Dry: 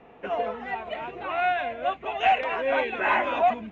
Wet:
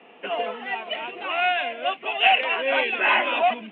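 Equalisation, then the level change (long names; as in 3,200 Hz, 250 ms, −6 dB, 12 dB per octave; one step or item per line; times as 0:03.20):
high-pass filter 200 Hz 24 dB per octave
low-pass with resonance 3,000 Hz, resonance Q 4.5
0.0 dB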